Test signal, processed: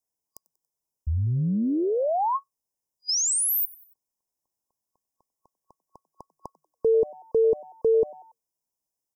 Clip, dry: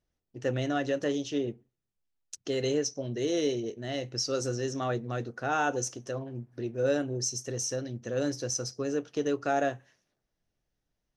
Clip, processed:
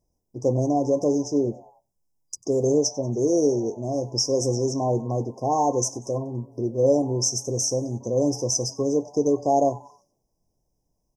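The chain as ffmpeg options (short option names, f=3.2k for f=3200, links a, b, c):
-filter_complex "[0:a]asplit=4[a][b][c][d];[b]adelay=94,afreqshift=150,volume=-22.5dB[e];[c]adelay=188,afreqshift=300,volume=-28.3dB[f];[d]adelay=282,afreqshift=450,volume=-34.2dB[g];[a][e][f][g]amix=inputs=4:normalize=0,afftfilt=real='re*(1-between(b*sr/4096,1100,4900))':imag='im*(1-between(b*sr/4096,1100,4900))':win_size=4096:overlap=0.75,volume=8dB"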